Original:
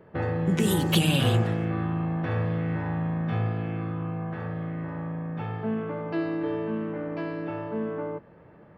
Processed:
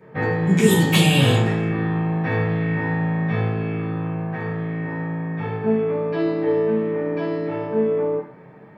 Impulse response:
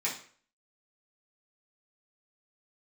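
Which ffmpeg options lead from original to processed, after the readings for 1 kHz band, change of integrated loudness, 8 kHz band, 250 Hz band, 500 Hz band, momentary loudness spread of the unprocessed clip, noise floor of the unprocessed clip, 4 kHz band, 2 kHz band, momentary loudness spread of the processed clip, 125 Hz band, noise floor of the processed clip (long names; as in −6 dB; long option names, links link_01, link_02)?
+6.0 dB, +7.0 dB, can't be measured, +6.5 dB, +10.0 dB, 11 LU, −52 dBFS, +6.0 dB, +9.5 dB, 11 LU, +5.5 dB, −44 dBFS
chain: -filter_complex "[1:a]atrim=start_sample=2205[link_01];[0:a][link_01]afir=irnorm=-1:irlink=0,volume=2.5dB"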